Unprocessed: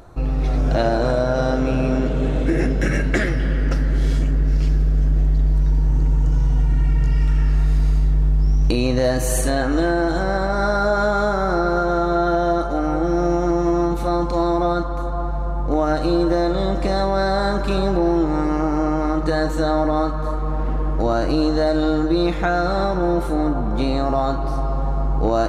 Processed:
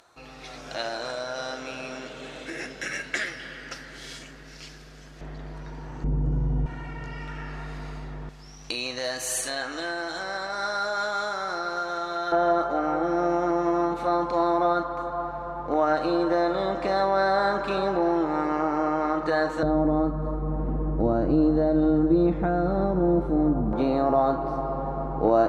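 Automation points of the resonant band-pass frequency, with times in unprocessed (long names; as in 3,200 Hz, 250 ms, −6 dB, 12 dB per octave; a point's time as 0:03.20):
resonant band-pass, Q 0.56
4,700 Hz
from 0:05.21 1,600 Hz
from 0:06.04 280 Hz
from 0:06.66 1,300 Hz
from 0:08.29 4,200 Hz
from 0:12.32 1,200 Hz
from 0:19.63 200 Hz
from 0:23.73 550 Hz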